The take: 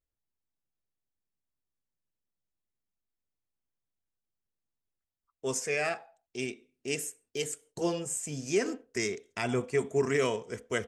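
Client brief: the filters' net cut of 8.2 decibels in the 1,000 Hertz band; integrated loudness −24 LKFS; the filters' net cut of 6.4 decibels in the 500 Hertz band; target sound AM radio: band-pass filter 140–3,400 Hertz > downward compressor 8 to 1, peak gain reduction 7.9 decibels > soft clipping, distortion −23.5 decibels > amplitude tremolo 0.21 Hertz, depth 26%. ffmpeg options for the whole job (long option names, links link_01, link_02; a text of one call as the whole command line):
ffmpeg -i in.wav -af "highpass=140,lowpass=3400,equalizer=frequency=500:width_type=o:gain=-6.5,equalizer=frequency=1000:width_type=o:gain=-9,acompressor=threshold=-34dB:ratio=8,asoftclip=threshold=-27dB,tremolo=f=0.21:d=0.26,volume=19dB" out.wav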